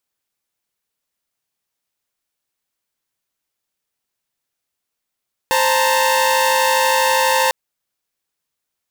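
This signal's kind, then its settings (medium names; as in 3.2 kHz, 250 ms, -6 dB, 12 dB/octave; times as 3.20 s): chord C5/A5/A#5 saw, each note -15.5 dBFS 2.00 s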